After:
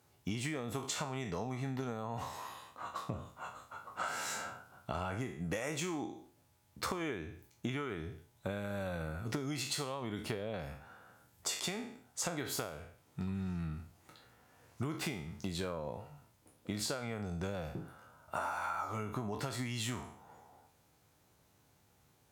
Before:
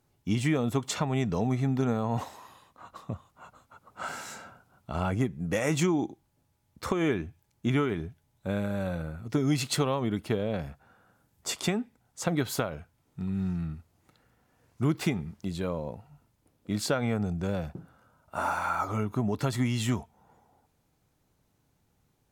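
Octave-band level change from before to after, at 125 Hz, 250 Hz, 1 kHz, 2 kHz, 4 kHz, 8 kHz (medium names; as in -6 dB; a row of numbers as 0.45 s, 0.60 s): -10.5 dB, -11.0 dB, -6.0 dB, -5.5 dB, -4.0 dB, -3.0 dB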